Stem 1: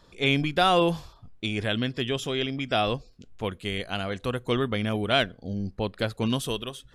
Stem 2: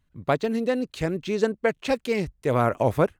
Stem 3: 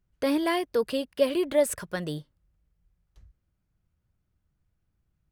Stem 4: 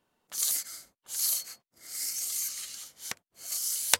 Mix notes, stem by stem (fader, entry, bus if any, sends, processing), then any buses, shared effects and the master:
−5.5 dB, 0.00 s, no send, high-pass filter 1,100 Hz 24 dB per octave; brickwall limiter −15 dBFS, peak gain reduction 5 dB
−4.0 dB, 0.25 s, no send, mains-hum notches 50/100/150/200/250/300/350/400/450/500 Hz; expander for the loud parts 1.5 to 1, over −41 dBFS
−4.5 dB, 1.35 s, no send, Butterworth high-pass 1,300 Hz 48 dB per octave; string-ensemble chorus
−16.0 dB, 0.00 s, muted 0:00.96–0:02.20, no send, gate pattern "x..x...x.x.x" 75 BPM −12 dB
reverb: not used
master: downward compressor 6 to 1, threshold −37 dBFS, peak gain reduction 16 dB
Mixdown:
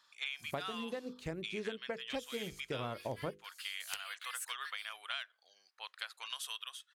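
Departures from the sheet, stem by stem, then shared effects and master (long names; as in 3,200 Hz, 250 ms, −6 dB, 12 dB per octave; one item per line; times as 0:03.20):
stem 1: missing brickwall limiter −15 dBFS, peak gain reduction 5 dB
stem 3: entry 1.35 s → 2.70 s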